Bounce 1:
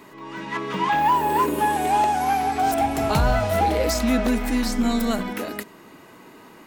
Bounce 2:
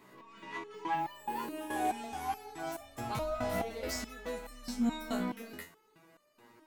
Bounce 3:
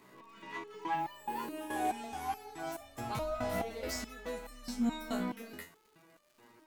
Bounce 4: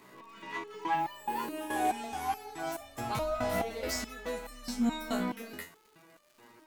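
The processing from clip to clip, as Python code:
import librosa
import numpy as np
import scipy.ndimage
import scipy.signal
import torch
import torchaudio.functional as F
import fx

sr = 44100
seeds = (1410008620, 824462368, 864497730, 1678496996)

y1 = fx.resonator_held(x, sr, hz=4.7, low_hz=62.0, high_hz=600.0)
y1 = y1 * librosa.db_to_amplitude(-3.5)
y2 = fx.dmg_crackle(y1, sr, seeds[0], per_s=210.0, level_db=-55.0)
y2 = y2 * librosa.db_to_amplitude(-1.0)
y3 = fx.low_shelf(y2, sr, hz=420.0, db=-2.5)
y3 = y3 * librosa.db_to_amplitude(4.5)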